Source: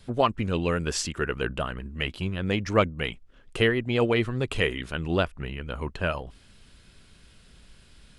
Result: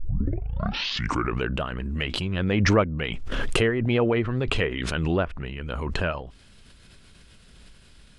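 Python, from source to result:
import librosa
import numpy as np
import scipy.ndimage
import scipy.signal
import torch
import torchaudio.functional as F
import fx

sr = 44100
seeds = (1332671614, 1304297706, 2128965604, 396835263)

y = fx.tape_start_head(x, sr, length_s=1.47)
y = fx.env_lowpass_down(y, sr, base_hz=1900.0, full_db=-19.5)
y = fx.pre_swell(y, sr, db_per_s=22.0)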